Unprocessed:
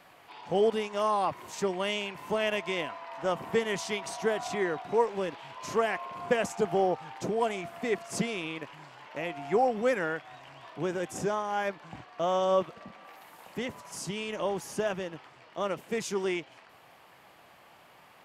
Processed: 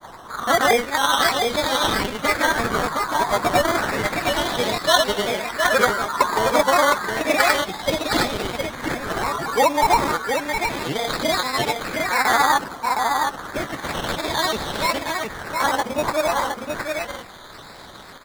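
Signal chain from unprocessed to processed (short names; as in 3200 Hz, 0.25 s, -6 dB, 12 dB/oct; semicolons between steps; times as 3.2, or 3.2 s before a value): repeated pitch sweeps +10 st, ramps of 0.632 s; high shelf 4600 Hz +7.5 dB; in parallel at +2 dB: compressor, threshold -43 dBFS, peak gain reduction 20.5 dB; on the sum: sample-and-hold 16×; grains, pitch spread up and down by 3 st; on a send: echo 0.714 s -4.5 dB; on the sum: LFO bell 0.31 Hz 970–3900 Hz +8 dB; gain +7 dB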